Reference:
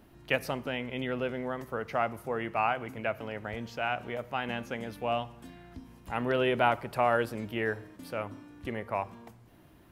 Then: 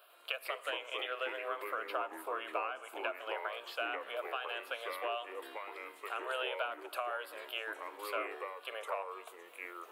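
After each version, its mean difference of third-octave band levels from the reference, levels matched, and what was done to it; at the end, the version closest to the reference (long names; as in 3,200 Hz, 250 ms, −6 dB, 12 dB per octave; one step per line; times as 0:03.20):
13.0 dB: high-pass filter 670 Hz 24 dB per octave
downward compressor 12 to 1, threshold −38 dBFS, peak gain reduction 17.5 dB
phaser with its sweep stopped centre 1,300 Hz, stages 8
delay with pitch and tempo change per echo 100 ms, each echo −4 semitones, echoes 2, each echo −6 dB
level +6.5 dB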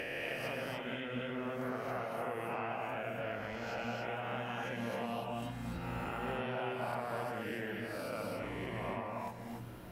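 9.5 dB: peak hold with a rise ahead of every peak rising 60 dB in 1.19 s
downward compressor 6 to 1, threshold −41 dBFS, peak gain reduction 21 dB
echo through a band-pass that steps 530 ms, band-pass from 230 Hz, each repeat 1.4 octaves, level −11 dB
reverb whose tail is shaped and stops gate 320 ms rising, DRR −0.5 dB
level +1 dB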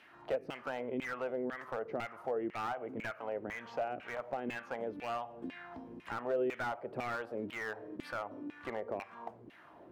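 7.0 dB: dynamic equaliser 970 Hz, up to −6 dB, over −46 dBFS, Q 4
auto-filter band-pass saw down 2 Hz 280–2,500 Hz
downward compressor 2.5 to 1, threshold −51 dBFS, peak gain reduction 15.5 dB
slew-rate limiting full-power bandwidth 5.5 Hz
level +13 dB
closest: third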